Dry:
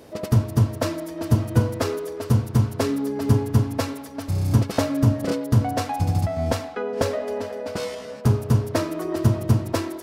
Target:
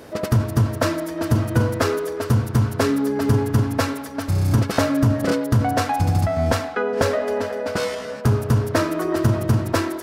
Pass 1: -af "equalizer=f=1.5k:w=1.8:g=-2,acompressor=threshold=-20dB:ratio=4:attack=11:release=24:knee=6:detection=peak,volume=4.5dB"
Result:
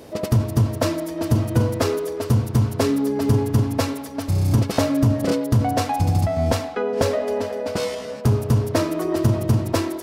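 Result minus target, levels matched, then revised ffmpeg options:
2000 Hz band -5.5 dB
-af "equalizer=f=1.5k:w=1.8:g=6,acompressor=threshold=-20dB:ratio=4:attack=11:release=24:knee=6:detection=peak,volume=4.5dB"

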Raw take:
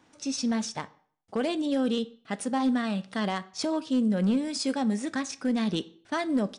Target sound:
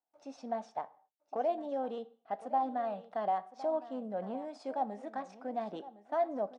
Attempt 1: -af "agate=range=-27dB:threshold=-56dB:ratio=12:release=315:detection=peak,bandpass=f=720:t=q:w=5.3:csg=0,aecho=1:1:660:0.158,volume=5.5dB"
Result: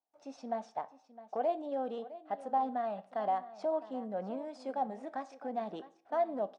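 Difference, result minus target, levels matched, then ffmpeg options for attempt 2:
echo 0.401 s early
-af "agate=range=-27dB:threshold=-56dB:ratio=12:release=315:detection=peak,bandpass=f=720:t=q:w=5.3:csg=0,aecho=1:1:1061:0.158,volume=5.5dB"

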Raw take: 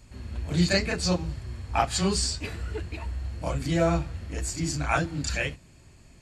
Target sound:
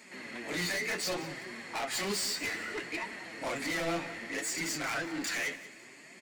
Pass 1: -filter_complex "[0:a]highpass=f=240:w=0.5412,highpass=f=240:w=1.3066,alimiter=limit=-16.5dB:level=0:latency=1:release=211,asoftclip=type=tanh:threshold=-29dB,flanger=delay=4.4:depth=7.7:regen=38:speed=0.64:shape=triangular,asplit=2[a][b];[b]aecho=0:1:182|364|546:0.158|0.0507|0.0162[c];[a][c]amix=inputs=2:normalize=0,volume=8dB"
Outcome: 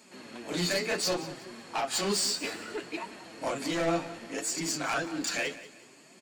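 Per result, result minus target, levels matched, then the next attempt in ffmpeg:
2000 Hz band -4.5 dB; soft clip: distortion -4 dB
-filter_complex "[0:a]highpass=f=240:w=0.5412,highpass=f=240:w=1.3066,equalizer=f=2k:w=3.5:g=14.5,alimiter=limit=-16.5dB:level=0:latency=1:release=211,asoftclip=type=tanh:threshold=-29dB,flanger=delay=4.4:depth=7.7:regen=38:speed=0.64:shape=triangular,asplit=2[a][b];[b]aecho=0:1:182|364|546:0.158|0.0507|0.0162[c];[a][c]amix=inputs=2:normalize=0,volume=8dB"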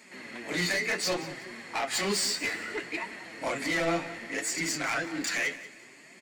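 soft clip: distortion -4 dB
-filter_complex "[0:a]highpass=f=240:w=0.5412,highpass=f=240:w=1.3066,equalizer=f=2k:w=3.5:g=14.5,alimiter=limit=-16.5dB:level=0:latency=1:release=211,asoftclip=type=tanh:threshold=-35.5dB,flanger=delay=4.4:depth=7.7:regen=38:speed=0.64:shape=triangular,asplit=2[a][b];[b]aecho=0:1:182|364|546:0.158|0.0507|0.0162[c];[a][c]amix=inputs=2:normalize=0,volume=8dB"

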